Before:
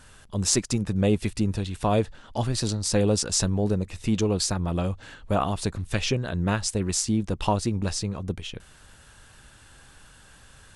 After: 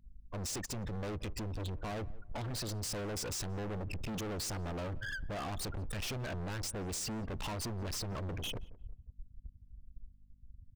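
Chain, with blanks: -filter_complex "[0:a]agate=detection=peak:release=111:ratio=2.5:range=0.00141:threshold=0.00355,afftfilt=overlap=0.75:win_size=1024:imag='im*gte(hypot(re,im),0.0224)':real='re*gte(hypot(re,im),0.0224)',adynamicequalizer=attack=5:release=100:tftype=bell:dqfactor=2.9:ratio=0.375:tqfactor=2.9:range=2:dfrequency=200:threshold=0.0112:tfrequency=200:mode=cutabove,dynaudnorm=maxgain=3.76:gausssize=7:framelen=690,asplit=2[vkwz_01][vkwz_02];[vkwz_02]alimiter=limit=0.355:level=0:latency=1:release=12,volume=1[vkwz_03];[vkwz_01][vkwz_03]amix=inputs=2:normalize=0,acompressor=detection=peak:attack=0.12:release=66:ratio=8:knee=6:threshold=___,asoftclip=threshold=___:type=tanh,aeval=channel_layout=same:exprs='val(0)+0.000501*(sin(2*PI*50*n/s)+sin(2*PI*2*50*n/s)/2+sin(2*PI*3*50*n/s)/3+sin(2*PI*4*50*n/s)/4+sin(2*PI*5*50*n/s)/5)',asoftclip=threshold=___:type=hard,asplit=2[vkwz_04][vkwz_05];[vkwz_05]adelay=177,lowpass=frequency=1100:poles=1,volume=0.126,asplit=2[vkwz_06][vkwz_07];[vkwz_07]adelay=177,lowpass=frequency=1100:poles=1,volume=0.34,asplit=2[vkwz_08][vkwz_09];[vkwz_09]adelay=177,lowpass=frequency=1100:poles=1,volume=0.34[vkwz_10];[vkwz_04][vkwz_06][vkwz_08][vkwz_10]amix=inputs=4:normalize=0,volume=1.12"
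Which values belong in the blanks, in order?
0.0708, 0.0282, 0.0119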